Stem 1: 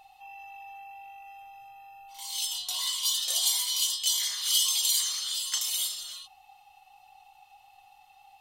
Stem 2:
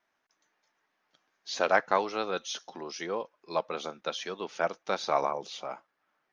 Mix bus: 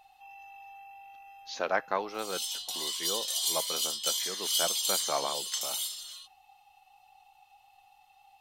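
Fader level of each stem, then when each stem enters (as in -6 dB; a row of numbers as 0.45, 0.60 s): -4.0, -4.5 dB; 0.00, 0.00 s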